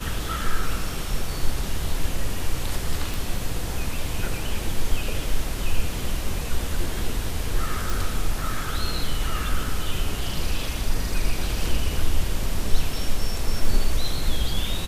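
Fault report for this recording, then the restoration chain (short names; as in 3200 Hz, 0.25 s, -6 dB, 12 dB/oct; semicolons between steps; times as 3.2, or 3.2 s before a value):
3.14 pop
7.9 pop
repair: de-click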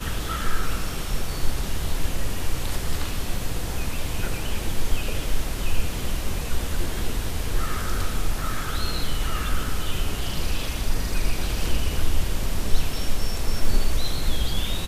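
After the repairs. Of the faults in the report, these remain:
none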